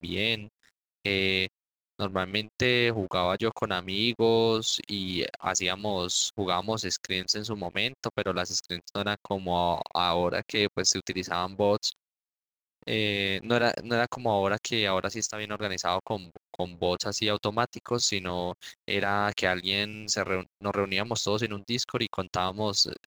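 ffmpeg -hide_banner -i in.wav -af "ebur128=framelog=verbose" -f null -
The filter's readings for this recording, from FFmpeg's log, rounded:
Integrated loudness:
  I:         -28.0 LUFS
  Threshold: -38.1 LUFS
Loudness range:
  LRA:         2.7 LU
  Threshold: -48.2 LUFS
  LRA low:   -29.4 LUFS
  LRA high:  -26.7 LUFS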